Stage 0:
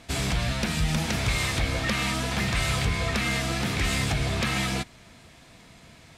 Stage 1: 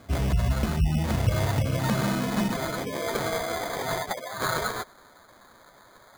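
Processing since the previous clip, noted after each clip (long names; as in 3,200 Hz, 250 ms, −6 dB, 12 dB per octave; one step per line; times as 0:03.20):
gate on every frequency bin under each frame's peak −20 dB strong
high-pass filter sweep 64 Hz → 1,100 Hz, 0:00.95–0:04.41
decimation without filtering 16×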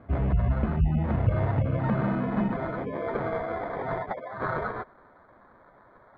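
Bessel low-pass filter 1,400 Hz, order 4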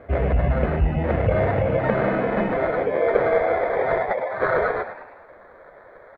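octave-band graphic EQ 125/250/500/1,000/2,000 Hz −6/−7/+11/−5/+7 dB
on a send: echo with shifted repeats 106 ms, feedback 47%, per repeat +88 Hz, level −11 dB
on the sum: level +5.5 dB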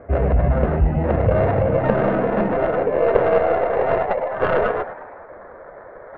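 stylus tracing distortion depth 0.2 ms
low-pass filter 1,500 Hz 12 dB per octave
reversed playback
upward compression, threshold −35 dBFS
reversed playback
level +3 dB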